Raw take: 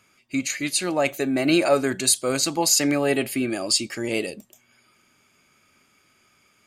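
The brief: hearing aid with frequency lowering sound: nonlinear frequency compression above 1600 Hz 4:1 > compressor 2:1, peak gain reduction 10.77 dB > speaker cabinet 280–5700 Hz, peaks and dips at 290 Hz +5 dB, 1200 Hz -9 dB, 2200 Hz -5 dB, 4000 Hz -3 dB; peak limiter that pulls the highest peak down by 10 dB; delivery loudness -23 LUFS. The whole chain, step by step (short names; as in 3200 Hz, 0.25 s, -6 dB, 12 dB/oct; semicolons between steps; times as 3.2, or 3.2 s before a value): limiter -15.5 dBFS; nonlinear frequency compression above 1600 Hz 4:1; compressor 2:1, threshold -36 dBFS; speaker cabinet 280–5700 Hz, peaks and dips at 290 Hz +5 dB, 1200 Hz -9 dB, 2200 Hz -5 dB, 4000 Hz -3 dB; gain +11 dB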